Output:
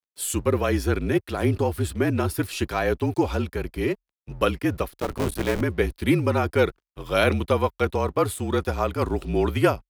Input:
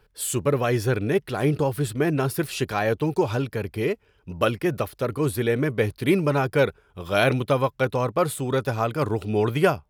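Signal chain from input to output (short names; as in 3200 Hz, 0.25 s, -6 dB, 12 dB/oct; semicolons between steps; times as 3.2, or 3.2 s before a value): 4.91–5.61 cycle switcher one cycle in 3, muted; crossover distortion -51 dBFS; frequency shift -41 Hz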